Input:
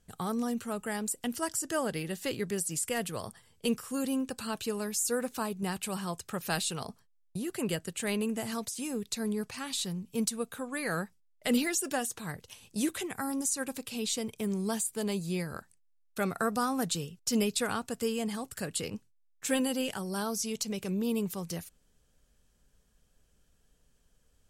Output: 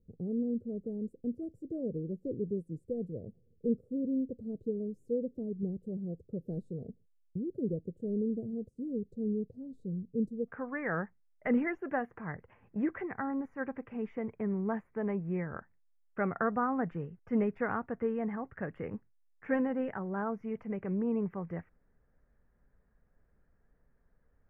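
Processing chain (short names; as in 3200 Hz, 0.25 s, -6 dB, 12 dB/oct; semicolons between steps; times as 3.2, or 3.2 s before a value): elliptic low-pass 500 Hz, stop band 50 dB, from 10.47 s 2000 Hz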